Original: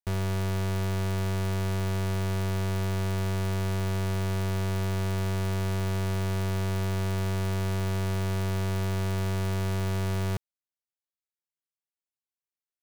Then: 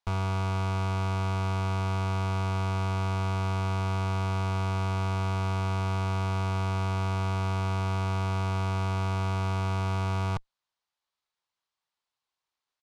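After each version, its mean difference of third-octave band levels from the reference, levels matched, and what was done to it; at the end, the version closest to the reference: 4.5 dB: ten-band graphic EQ 250 Hz -5 dB, 1 kHz +10 dB, 4 kHz +7 dB; valve stage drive 35 dB, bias 0.4; distance through air 64 m; resampled via 32 kHz; trim +8 dB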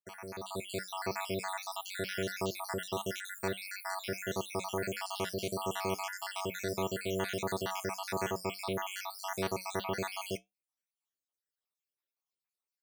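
13.0 dB: random holes in the spectrogram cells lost 71%; high-pass 310 Hz 12 dB/octave; level rider gain up to 12 dB; flange 1.6 Hz, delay 6.8 ms, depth 1.7 ms, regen -73%; trim -2.5 dB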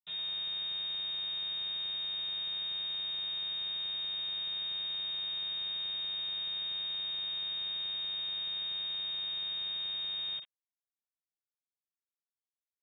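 17.0 dB: inharmonic resonator 230 Hz, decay 0.25 s, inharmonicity 0.008; companded quantiser 4-bit; frequency inversion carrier 3.7 kHz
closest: first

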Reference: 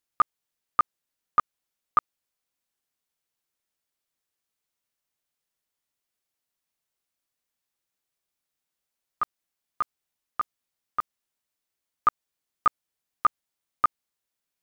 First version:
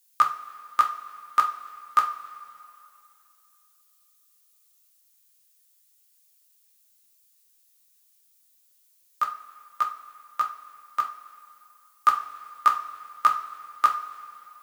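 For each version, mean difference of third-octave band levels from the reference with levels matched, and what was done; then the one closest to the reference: 7.5 dB: treble shelf 2.7 kHz +9.5 dB; two-slope reverb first 0.32 s, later 2.8 s, from -18 dB, DRR 1.5 dB; flange 0.19 Hz, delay 6.1 ms, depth 7.9 ms, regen +84%; tilt EQ +3.5 dB/octave; trim +2.5 dB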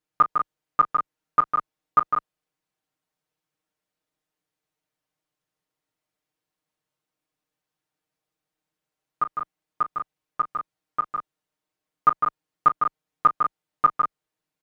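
3.0 dB: high-pass 230 Hz 6 dB/octave; tilt EQ -3 dB/octave; comb 6.5 ms, depth 100%; on a send: loudspeakers at several distances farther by 12 m -12 dB, 53 m -6 dB, 66 m -8 dB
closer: second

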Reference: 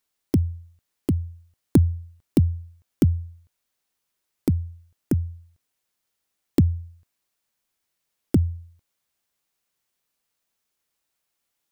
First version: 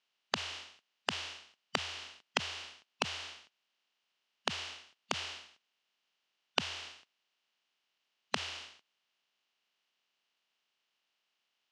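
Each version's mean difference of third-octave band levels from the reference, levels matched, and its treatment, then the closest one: 22.5 dB: spectral contrast reduction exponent 0.31; compression 20:1, threshold -26 dBFS, peak gain reduction 17.5 dB; cabinet simulation 270–5400 Hz, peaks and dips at 310 Hz -5 dB, 500 Hz -5 dB, 2.9 kHz +9 dB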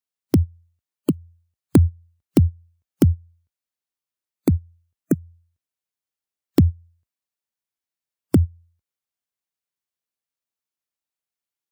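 1.0 dB: high-pass 45 Hz 24 dB/octave; spectral noise reduction 20 dB; in parallel at 0 dB: compression, threshold -26 dBFS, peak gain reduction 13.5 dB; on the sum: trim +1 dB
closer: second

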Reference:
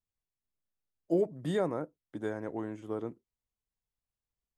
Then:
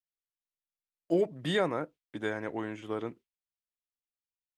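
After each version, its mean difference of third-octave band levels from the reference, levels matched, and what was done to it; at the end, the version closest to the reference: 3.0 dB: gate with hold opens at -50 dBFS; peaking EQ 2.7 kHz +13.5 dB 2 oct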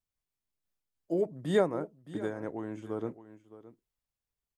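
2.0 dB: delay 618 ms -15.5 dB; random flutter of the level, depth 65%; trim +6 dB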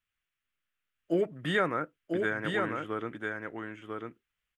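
5.5 dB: high-order bell 2 kHz +15 dB; on a send: delay 995 ms -4 dB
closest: second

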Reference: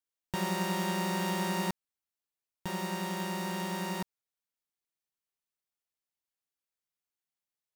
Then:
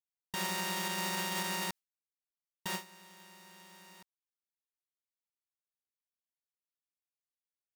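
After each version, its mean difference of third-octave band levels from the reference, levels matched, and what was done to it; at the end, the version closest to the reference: 8.5 dB: gate with hold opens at -24 dBFS; tilt shelf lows -6.5 dB; peak limiter -22 dBFS, peak gain reduction 7.5 dB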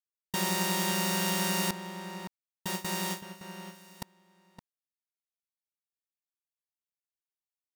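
6.5 dB: gate with hold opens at -25 dBFS; treble shelf 2.8 kHz +10.5 dB; echo from a far wall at 97 m, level -9 dB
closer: second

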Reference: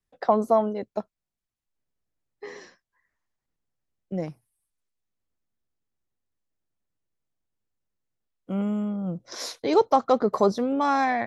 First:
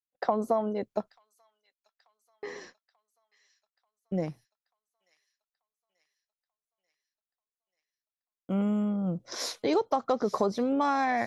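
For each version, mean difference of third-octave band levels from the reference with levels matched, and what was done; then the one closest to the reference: 2.5 dB: gate -50 dBFS, range -37 dB; compression 5:1, threshold -23 dBFS, peak gain reduction 9.5 dB; feedback echo behind a high-pass 887 ms, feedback 58%, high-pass 2.9 kHz, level -16 dB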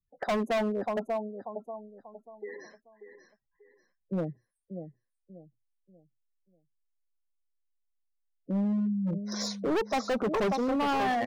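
7.0 dB: spectral gate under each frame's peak -15 dB strong; on a send: feedback delay 588 ms, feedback 32%, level -10 dB; on the sum: hard clipper -25 dBFS, distortion -5 dB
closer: first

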